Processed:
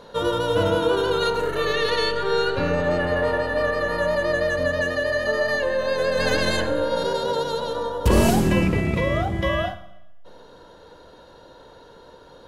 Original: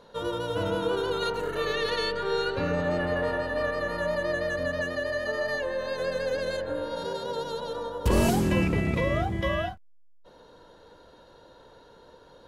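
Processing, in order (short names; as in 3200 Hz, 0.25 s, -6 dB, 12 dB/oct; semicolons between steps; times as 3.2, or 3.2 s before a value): 6.17–6.66 spectral limiter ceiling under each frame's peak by 16 dB; vocal rider 2 s; Schroeder reverb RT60 0.89 s, combs from 32 ms, DRR 12 dB; gain +5.5 dB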